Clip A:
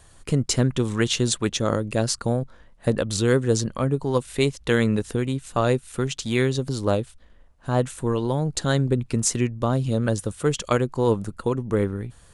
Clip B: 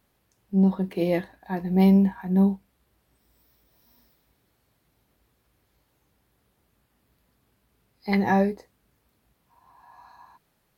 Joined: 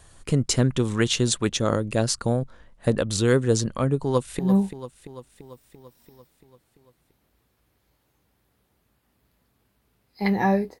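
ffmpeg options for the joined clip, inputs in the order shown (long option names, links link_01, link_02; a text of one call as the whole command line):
ffmpeg -i cue0.wav -i cue1.wav -filter_complex "[0:a]apad=whole_dur=10.8,atrim=end=10.8,atrim=end=4.392[link_01];[1:a]atrim=start=2.258:end=8.67[link_02];[link_01][link_02]acrossfade=duration=0.004:curve1=hsin:curve2=hsin,asplit=2[link_03][link_04];[link_04]afade=type=in:start_time=4.04:duration=0.01,afade=type=out:start_time=4.39:duration=0.01,aecho=0:1:340|680|1020|1360|1700|2040|2380|2720:0.281838|0.183195|0.119077|0.0773998|0.0503099|0.0327014|0.0212559|0.0138164[link_05];[link_03][link_05]amix=inputs=2:normalize=0" out.wav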